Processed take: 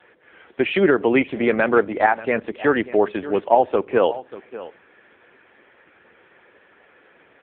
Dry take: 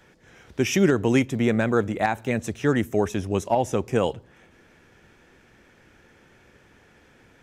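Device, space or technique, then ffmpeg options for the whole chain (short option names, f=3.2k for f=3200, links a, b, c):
satellite phone: -af "highpass=380,lowpass=3.2k,aecho=1:1:587:0.15,volume=8dB" -ar 8000 -c:a libopencore_amrnb -b:a 6700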